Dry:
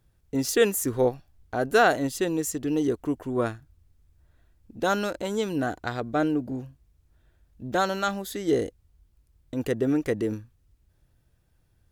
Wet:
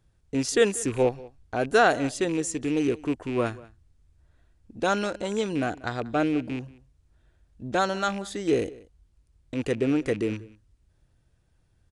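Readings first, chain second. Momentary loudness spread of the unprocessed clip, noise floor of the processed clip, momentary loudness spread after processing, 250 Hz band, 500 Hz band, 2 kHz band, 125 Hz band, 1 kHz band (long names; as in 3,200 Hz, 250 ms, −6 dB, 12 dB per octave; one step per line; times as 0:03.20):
12 LU, −66 dBFS, 12 LU, 0.0 dB, 0.0 dB, +0.5 dB, 0.0 dB, 0.0 dB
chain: loose part that buzzes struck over −34 dBFS, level −29 dBFS
downsampling to 22,050 Hz
slap from a distant wall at 32 metres, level −21 dB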